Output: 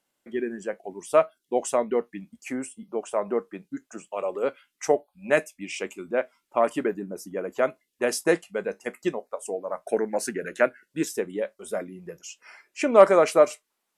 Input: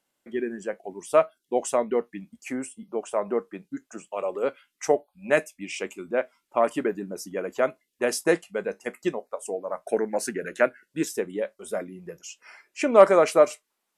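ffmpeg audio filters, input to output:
ffmpeg -i in.wav -filter_complex "[0:a]asettb=1/sr,asplit=3[link_01][link_02][link_03];[link_01]atrim=end=6.944[link_04];[link_02]atrim=start=6.94:end=7.57,asetpts=PTS-STARTPTS,afade=type=in:duration=0.004:curve=qsin,afade=type=out:start_time=0.626:duration=0.004:curve=qsin,equalizer=frequency=4100:width_type=o:width=2.4:gain=-6.5[link_05];[link_03]atrim=start=7.566[link_06];[link_04][link_05]acrossfade=duration=0.004:curve1=hsin:curve2=qsin[link_07];[link_07][link_06]acrossfade=duration=0.004:curve1=qsin:curve2=hsin" out.wav

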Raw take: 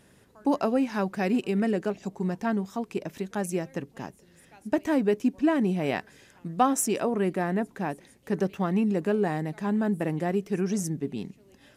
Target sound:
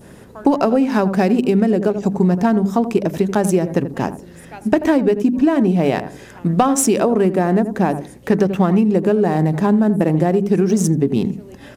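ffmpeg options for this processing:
ffmpeg -i in.wav -filter_complex "[0:a]apsyclip=16dB,asplit=2[link_01][link_02];[link_02]adynamicsmooth=sensitivity=4.5:basefreq=1500,volume=0dB[link_03];[link_01][link_03]amix=inputs=2:normalize=0,bandreject=frequency=50:width_type=h:width=6,bandreject=frequency=100:width_type=h:width=6,bandreject=frequency=150:width_type=h:width=6,bandreject=frequency=200:width_type=h:width=6,bandreject=frequency=250:width_type=h:width=6,bandreject=frequency=300:width_type=h:width=6,asplit=2[link_04][link_05];[link_05]adelay=83,lowpass=frequency=860:poles=1,volume=-11.5dB,asplit=2[link_06][link_07];[link_07]adelay=83,lowpass=frequency=860:poles=1,volume=0.2,asplit=2[link_08][link_09];[link_09]adelay=83,lowpass=frequency=860:poles=1,volume=0.2[link_10];[link_06][link_08][link_10]amix=inputs=3:normalize=0[link_11];[link_04][link_11]amix=inputs=2:normalize=0,acompressor=threshold=-7dB:ratio=16,adynamicequalizer=threshold=0.0251:dfrequency=2100:dqfactor=0.71:tfrequency=2100:tqfactor=0.71:attack=5:release=100:ratio=0.375:range=4:mode=cutabove:tftype=bell,volume=-3.5dB" out.wav

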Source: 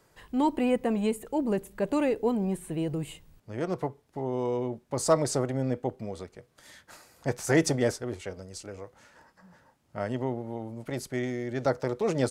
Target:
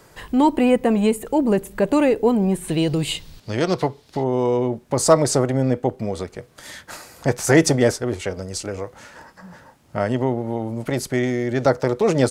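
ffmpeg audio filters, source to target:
ffmpeg -i in.wav -filter_complex "[0:a]asplit=2[link_01][link_02];[link_02]acompressor=threshold=-38dB:ratio=6,volume=0.5dB[link_03];[link_01][link_03]amix=inputs=2:normalize=0,asettb=1/sr,asplit=3[link_04][link_05][link_06];[link_04]atrim=end=2.684[link_07];[link_05]atrim=start=2.68:end=4.24,asetpts=PTS-STARTPTS,afade=type=in:duration=0.004:curve=qsin,afade=type=out:start_time=1.556:duration=0.004:curve=qsin,equalizer=frequency=4200:width=1:gain=13.5[link_08];[link_06]atrim=start=4.236[link_09];[link_07][link_08]acrossfade=duration=0.004:curve1=hsin:curve2=qsin[link_10];[link_10][link_09]acrossfade=duration=0.004:curve1=qsin:curve2=hsin,volume=7.5dB" out.wav

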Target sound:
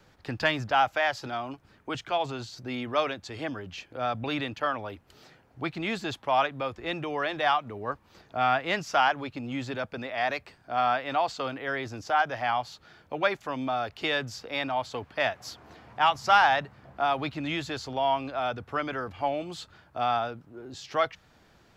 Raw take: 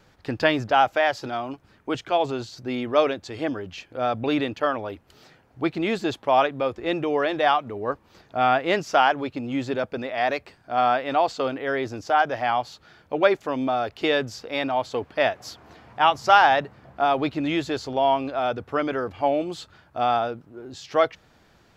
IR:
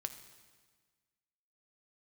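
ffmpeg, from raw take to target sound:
-filter_complex "[0:a]acrossover=split=240|650[link_01][link_02][link_03];[link_02]acompressor=threshold=-41dB:ratio=6[link_04];[link_01][link_04][link_03]amix=inputs=3:normalize=0,asoftclip=type=tanh:threshold=-6dB,volume=-2dB"

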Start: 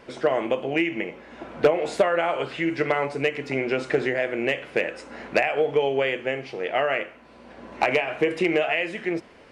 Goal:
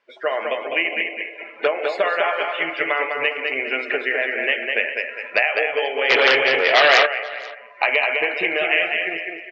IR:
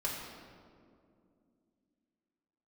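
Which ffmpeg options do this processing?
-filter_complex "[0:a]aecho=1:1:203|406|609|812|1015|1218:0.631|0.278|0.122|0.0537|0.0236|0.0104,asplit=2[link_01][link_02];[1:a]atrim=start_sample=2205[link_03];[link_02][link_03]afir=irnorm=-1:irlink=0,volume=-13dB[link_04];[link_01][link_04]amix=inputs=2:normalize=0,asplit=3[link_05][link_06][link_07];[link_05]afade=type=out:start_time=6.09:duration=0.02[link_08];[link_06]aeval=exprs='0.335*sin(PI/2*2.51*val(0)/0.335)':channel_layout=same,afade=type=in:start_time=6.09:duration=0.02,afade=type=out:start_time=7.05:duration=0.02[link_09];[link_07]afade=type=in:start_time=7.05:duration=0.02[link_10];[link_08][link_09][link_10]amix=inputs=3:normalize=0,bandpass=frequency=2500:width_type=q:width=0.65:csg=0,afftdn=noise_reduction=22:noise_floor=-38,asplit=2[link_11][link_12];[link_12]aecho=0:1:484:0.0794[link_13];[link_11][link_13]amix=inputs=2:normalize=0,volume=5.5dB"

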